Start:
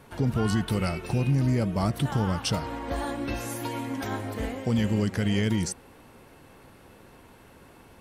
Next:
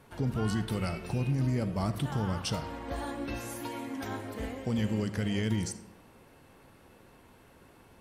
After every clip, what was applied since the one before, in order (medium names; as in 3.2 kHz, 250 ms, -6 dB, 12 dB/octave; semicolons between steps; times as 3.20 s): reverberation RT60 1.0 s, pre-delay 34 ms, DRR 13 dB; trim -5.5 dB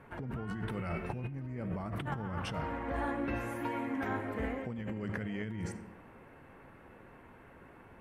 resonant high shelf 3 kHz -13.5 dB, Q 1.5; hum notches 50/100 Hz; compressor with a negative ratio -35 dBFS, ratio -1; trim -1.5 dB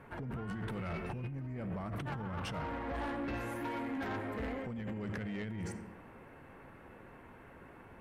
saturation -34.5 dBFS, distortion -13 dB; trim +1 dB